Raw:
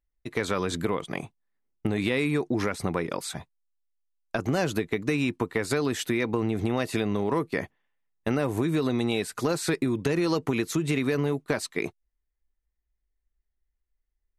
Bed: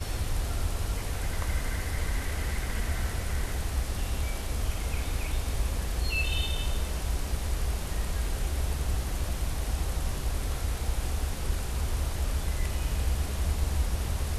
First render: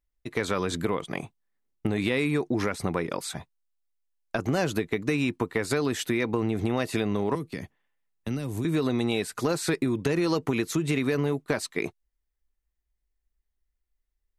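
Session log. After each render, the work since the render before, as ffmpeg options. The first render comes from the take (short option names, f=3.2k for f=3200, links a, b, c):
-filter_complex "[0:a]asettb=1/sr,asplit=3[a][b][c];[a]atrim=end=7.354[d];[b]atrim=start=7.35:end=8.65,asetpts=PTS-STARTPTS,afade=t=in:d=0.004:c=qsin,afade=t=out:st=1.296:d=0.004:c=qsin,acrossover=split=270|3000[e][f][g];[f]acompressor=threshold=-44dB:ratio=3:attack=3.2:release=140:knee=2.83:detection=peak[h];[e][h][g]amix=inputs=3:normalize=0[i];[c]atrim=start=8.646[j];[d][i]acrossfade=d=0.004:c1=hsin:c2=qsin[k];[k][j]acrossfade=d=0.004:c1=qsin:c2=hsin"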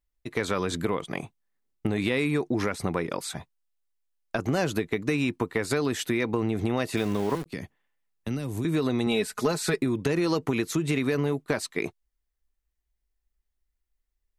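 -filter_complex "[0:a]asettb=1/sr,asplit=3[a][b][c];[a]atrim=end=6.974[d];[b]atrim=start=6.97:end=7.46,asetpts=PTS-STARTPTS,afade=t=in:d=0.004:c=qsin,afade=t=out:st=0.486:d=0.004:c=qsin,aeval=exprs='val(0)*gte(abs(val(0)),0.0168)':c=same[e];[c]atrim=start=7.456[f];[d][e]acrossfade=d=0.004:c1=hsin:c2=qsin[g];[g][f]acrossfade=d=0.004:c1=qsin:c2=hsin,asettb=1/sr,asplit=3[h][i][j];[h]atrim=end=9.064[k];[i]atrim=start=9.06:end=9.78,asetpts=PTS-STARTPTS,afade=t=in:d=0.004:c=qsin,afade=t=out:st=0.716:d=0.004:c=qsin,aecho=1:1:4.7:0.53,atrim=end_sample=31752[l];[j]atrim=start=9.776[m];[k][l]acrossfade=d=0.004:c1=hsin:c2=qsin[n];[n][m]acrossfade=d=0.004:c1=qsin:c2=hsin"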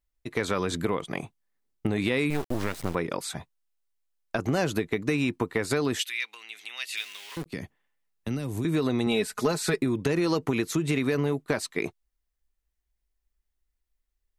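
-filter_complex "[0:a]asettb=1/sr,asplit=3[a][b][c];[a]atrim=end=2.304[d];[b]atrim=start=2.3:end=2.95,asetpts=PTS-STARTPTS,afade=t=in:d=0.004:c=qsin,afade=t=out:st=0.646:d=0.004:c=qsin,acrusher=bits=4:dc=4:mix=0:aa=0.000001[e];[c]atrim=start=2.946[f];[d][e]acrossfade=d=0.004:c1=hsin:c2=qsin[g];[g][f]acrossfade=d=0.004:c1=qsin:c2=hsin,asettb=1/sr,asplit=3[h][i][j];[h]atrim=end=5.994[k];[i]atrim=start=5.99:end=7.37,asetpts=PTS-STARTPTS,afade=t=in:d=0.004:c=qsin,afade=t=out:st=1.376:d=0.004:c=qsin,highpass=f=2.7k:t=q:w=1.9[l];[j]atrim=start=7.366[m];[k][l]acrossfade=d=0.004:c1=hsin:c2=qsin[n];[n][m]acrossfade=d=0.004:c1=qsin:c2=hsin"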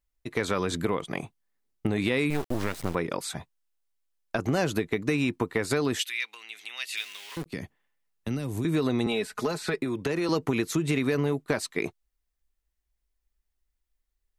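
-filter_complex "[0:a]asettb=1/sr,asplit=3[a][b][c];[a]atrim=end=9.064[d];[b]atrim=start=9.06:end=10.29,asetpts=PTS-STARTPTS,afade=t=in:d=0.004:c=qsin,afade=t=out:st=1.226:d=0.004:c=qsin,acrossover=split=340|4100[e][f][g];[e]acompressor=threshold=-33dB:ratio=4[h];[f]acompressor=threshold=-26dB:ratio=4[i];[g]acompressor=threshold=-45dB:ratio=4[j];[h][i][j]amix=inputs=3:normalize=0[k];[c]atrim=start=10.286[l];[d][k]acrossfade=d=0.004:c1=hsin:c2=qsin[m];[m][l]acrossfade=d=0.004:c1=qsin:c2=hsin"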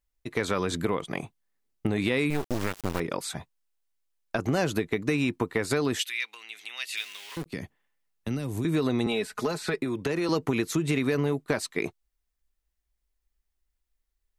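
-filter_complex "[0:a]asettb=1/sr,asplit=3[a][b][c];[a]atrim=end=2.484[d];[b]atrim=start=2.48:end=3,asetpts=PTS-STARTPTS,afade=t=in:d=0.004:c=qsin,afade=t=out:st=0.516:d=0.004:c=qsin,acrusher=bits=3:dc=4:mix=0:aa=0.000001[e];[c]atrim=start=2.996[f];[d][e]acrossfade=d=0.004:c1=hsin:c2=qsin[g];[g][f]acrossfade=d=0.004:c1=qsin:c2=hsin"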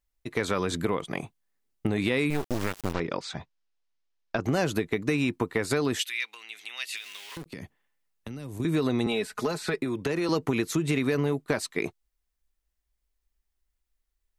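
-filter_complex "[0:a]asplit=3[a][b][c];[a]afade=t=out:st=2.92:d=0.02[d];[b]lowpass=f=6k:w=0.5412,lowpass=f=6k:w=1.3066,afade=t=in:st=2.92:d=0.02,afade=t=out:st=4.43:d=0.02[e];[c]afade=t=in:st=4.43:d=0.02[f];[d][e][f]amix=inputs=3:normalize=0,asettb=1/sr,asplit=3[g][h][i];[g]atrim=end=6.964[j];[h]atrim=start=6.96:end=8.6,asetpts=PTS-STARTPTS,afade=t=in:d=0.004:c=qsin,afade=t=out:st=1.636:d=0.004:c=qsin,acompressor=threshold=-34dB:ratio=6:attack=3.2:release=140:knee=1:detection=peak[k];[i]atrim=start=8.596[l];[j][k]acrossfade=d=0.004:c1=hsin:c2=qsin[m];[m][l]acrossfade=d=0.004:c1=qsin:c2=hsin"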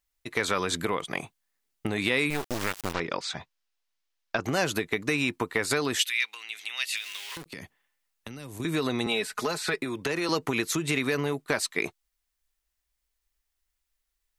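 -af "tiltshelf=f=640:g=-5"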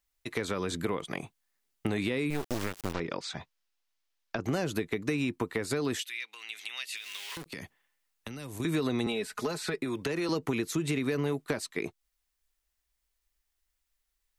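-filter_complex "[0:a]acrossover=split=480[a][b];[b]acompressor=threshold=-36dB:ratio=4[c];[a][c]amix=inputs=2:normalize=0"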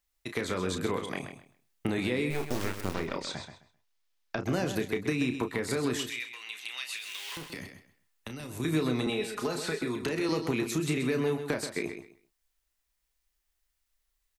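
-filter_complex "[0:a]asplit=2[a][b];[b]adelay=32,volume=-8dB[c];[a][c]amix=inputs=2:normalize=0,asplit=2[d][e];[e]aecho=0:1:130|260|390:0.355|0.0745|0.0156[f];[d][f]amix=inputs=2:normalize=0"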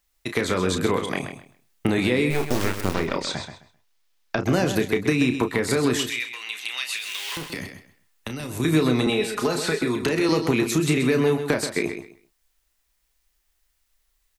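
-af "volume=8.5dB"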